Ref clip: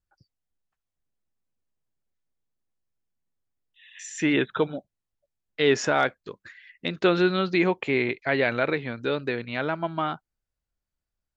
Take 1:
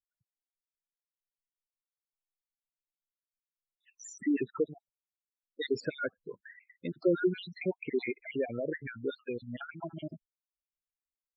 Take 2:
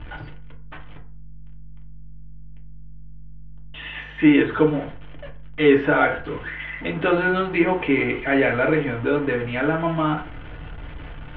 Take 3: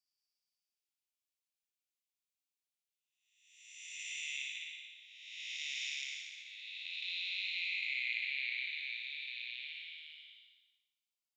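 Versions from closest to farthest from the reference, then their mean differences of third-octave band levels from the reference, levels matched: 2, 1, 3; 6.0, 11.5, 20.0 decibels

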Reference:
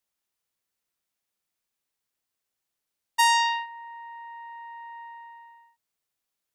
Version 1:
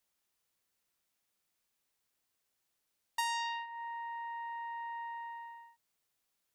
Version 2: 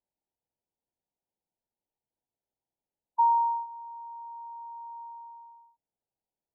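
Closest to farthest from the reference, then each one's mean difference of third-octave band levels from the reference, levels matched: 1, 2; 2.5, 4.0 decibels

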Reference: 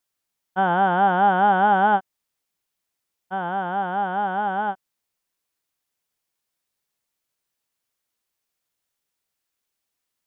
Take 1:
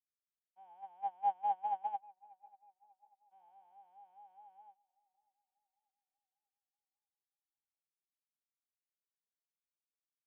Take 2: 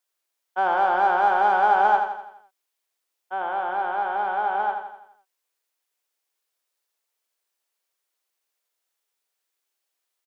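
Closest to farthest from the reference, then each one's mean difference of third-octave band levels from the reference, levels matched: 2, 1; 3.5, 11.5 decibels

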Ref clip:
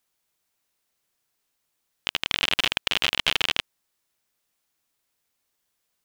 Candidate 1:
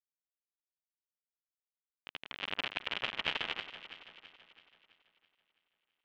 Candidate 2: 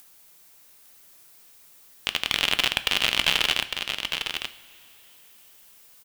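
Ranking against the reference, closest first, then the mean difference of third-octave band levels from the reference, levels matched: 2, 1; 2.0, 7.0 decibels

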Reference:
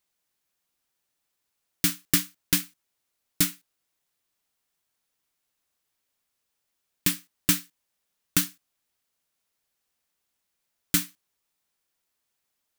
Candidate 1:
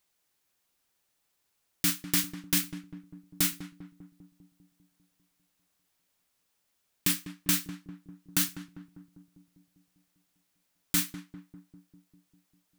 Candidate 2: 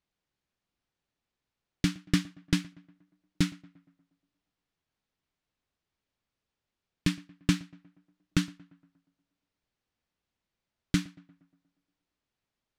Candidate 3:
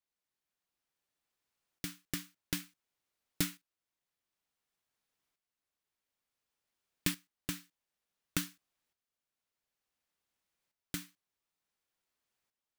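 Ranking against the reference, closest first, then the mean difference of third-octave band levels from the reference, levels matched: 3, 1, 2; 3.0, 5.0, 8.5 decibels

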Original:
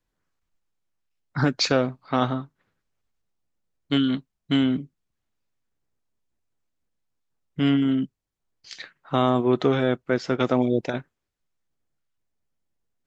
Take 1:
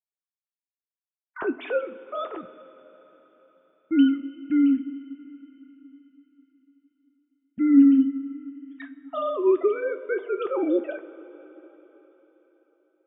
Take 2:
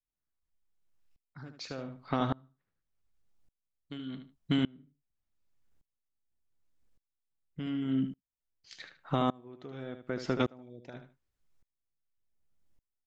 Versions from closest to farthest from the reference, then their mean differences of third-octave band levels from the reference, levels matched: 2, 1; 6.0, 12.0 decibels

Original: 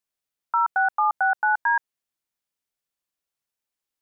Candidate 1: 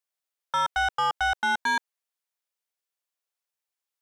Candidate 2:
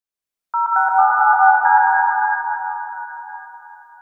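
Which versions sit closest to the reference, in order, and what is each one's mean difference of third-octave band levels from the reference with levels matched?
2, 1; 3.5, 13.5 decibels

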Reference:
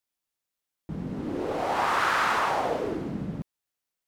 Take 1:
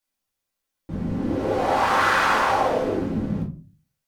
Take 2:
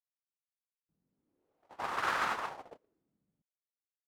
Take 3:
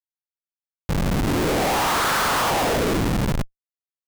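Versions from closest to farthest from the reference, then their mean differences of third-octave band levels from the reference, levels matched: 1, 3, 2; 2.0, 9.0, 17.0 decibels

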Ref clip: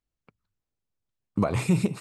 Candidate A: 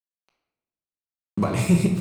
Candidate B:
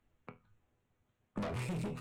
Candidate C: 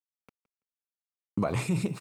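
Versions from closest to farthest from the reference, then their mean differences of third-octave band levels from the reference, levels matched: C, A, B; 2.0, 4.0, 6.5 decibels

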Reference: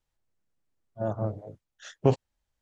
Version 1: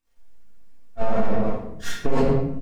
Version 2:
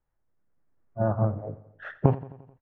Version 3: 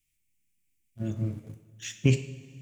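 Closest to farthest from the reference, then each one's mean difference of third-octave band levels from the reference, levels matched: 2, 3, 1; 4.0, 7.5, 12.5 decibels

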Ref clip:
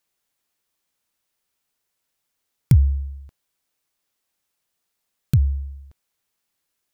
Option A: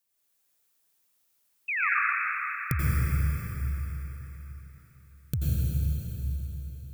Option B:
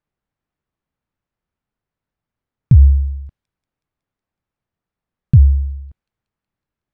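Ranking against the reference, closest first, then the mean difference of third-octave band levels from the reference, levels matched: B, A; 4.5, 15.5 decibels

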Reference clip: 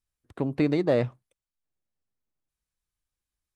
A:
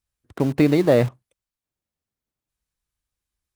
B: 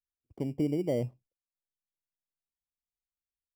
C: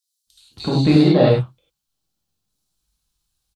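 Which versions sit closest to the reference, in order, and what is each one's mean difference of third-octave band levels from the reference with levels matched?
A, B, C; 3.5, 6.0, 12.5 decibels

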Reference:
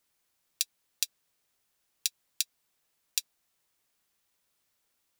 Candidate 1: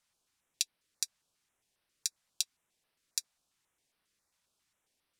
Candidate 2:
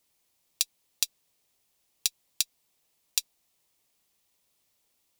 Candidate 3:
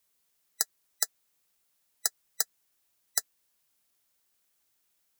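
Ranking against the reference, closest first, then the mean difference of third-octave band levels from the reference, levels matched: 1, 2, 3; 2.5, 6.0, 13.0 decibels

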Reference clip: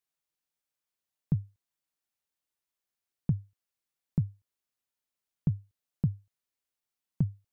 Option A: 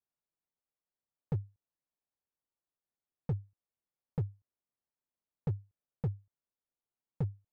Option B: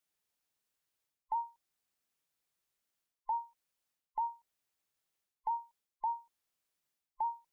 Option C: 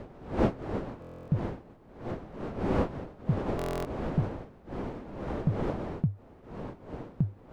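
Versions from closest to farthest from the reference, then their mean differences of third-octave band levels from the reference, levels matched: A, B, C; 3.0, 9.0, 13.5 decibels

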